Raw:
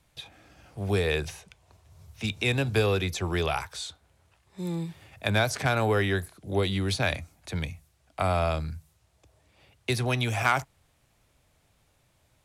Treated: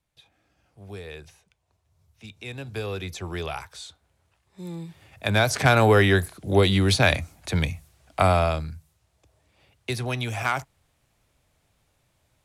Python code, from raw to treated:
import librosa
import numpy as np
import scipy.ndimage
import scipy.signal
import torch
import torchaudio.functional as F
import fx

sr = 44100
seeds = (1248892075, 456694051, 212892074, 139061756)

y = fx.gain(x, sr, db=fx.line((2.33, -13.0), (3.11, -4.0), (4.83, -4.0), (5.69, 7.5), (8.23, 7.5), (8.75, -1.5)))